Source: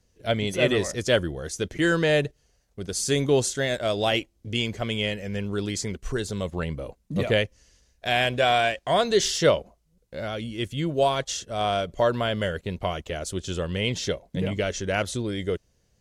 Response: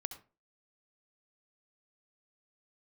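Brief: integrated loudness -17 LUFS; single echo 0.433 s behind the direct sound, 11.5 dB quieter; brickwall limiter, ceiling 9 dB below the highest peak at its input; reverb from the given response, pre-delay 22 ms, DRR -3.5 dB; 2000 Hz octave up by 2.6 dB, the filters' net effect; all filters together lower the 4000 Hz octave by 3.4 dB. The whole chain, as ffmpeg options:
-filter_complex "[0:a]equalizer=f=2k:t=o:g=5,equalizer=f=4k:t=o:g=-7,alimiter=limit=-16dB:level=0:latency=1,aecho=1:1:433:0.266,asplit=2[a][b];[1:a]atrim=start_sample=2205,adelay=22[c];[b][c]afir=irnorm=-1:irlink=0,volume=5dB[d];[a][d]amix=inputs=2:normalize=0,volume=6dB"

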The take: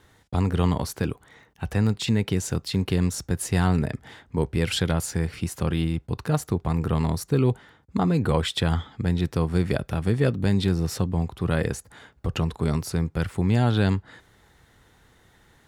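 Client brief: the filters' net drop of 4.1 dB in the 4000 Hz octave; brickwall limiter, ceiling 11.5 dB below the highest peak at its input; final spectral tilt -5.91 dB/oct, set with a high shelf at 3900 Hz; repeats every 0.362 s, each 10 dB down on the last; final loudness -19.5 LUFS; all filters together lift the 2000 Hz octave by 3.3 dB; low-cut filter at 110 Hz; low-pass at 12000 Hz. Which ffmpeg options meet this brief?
-af "highpass=110,lowpass=12k,equalizer=f=2k:t=o:g=6.5,highshelf=f=3.9k:g=-4,equalizer=f=4k:t=o:g=-5.5,alimiter=limit=-18.5dB:level=0:latency=1,aecho=1:1:362|724|1086|1448:0.316|0.101|0.0324|0.0104,volume=11dB"

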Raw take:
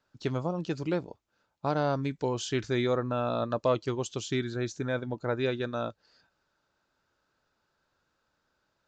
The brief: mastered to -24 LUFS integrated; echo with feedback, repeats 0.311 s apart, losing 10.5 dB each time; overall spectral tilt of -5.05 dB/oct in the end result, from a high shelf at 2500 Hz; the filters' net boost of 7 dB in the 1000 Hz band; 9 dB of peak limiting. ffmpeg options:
-af "equalizer=f=1k:t=o:g=8.5,highshelf=f=2.5k:g=4,alimiter=limit=-18dB:level=0:latency=1,aecho=1:1:311|622|933:0.299|0.0896|0.0269,volume=6.5dB"

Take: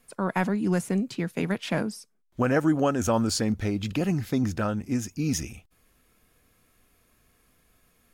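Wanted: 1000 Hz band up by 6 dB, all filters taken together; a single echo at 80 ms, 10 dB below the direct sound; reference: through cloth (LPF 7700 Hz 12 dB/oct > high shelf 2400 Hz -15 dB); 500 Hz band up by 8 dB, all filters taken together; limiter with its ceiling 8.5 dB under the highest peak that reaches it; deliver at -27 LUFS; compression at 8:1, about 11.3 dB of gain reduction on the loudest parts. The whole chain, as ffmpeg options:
-af "equalizer=f=500:t=o:g=8.5,equalizer=f=1k:t=o:g=7.5,acompressor=threshold=-23dB:ratio=8,alimiter=limit=-20.5dB:level=0:latency=1,lowpass=7.7k,highshelf=f=2.4k:g=-15,aecho=1:1:80:0.316,volume=4.5dB"

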